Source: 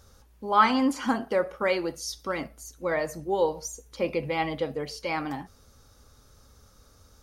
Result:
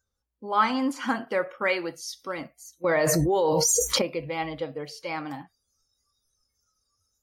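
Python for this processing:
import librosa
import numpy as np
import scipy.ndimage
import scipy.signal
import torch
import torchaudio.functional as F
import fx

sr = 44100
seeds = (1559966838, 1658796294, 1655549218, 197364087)

y = fx.noise_reduce_blind(x, sr, reduce_db=25)
y = fx.dynamic_eq(y, sr, hz=2000.0, q=0.9, threshold_db=-43.0, ratio=4.0, max_db=7, at=(0.92, 2.28))
y = fx.env_flatten(y, sr, amount_pct=100, at=(2.84, 4.02))
y = y * librosa.db_to_amplitude(-2.5)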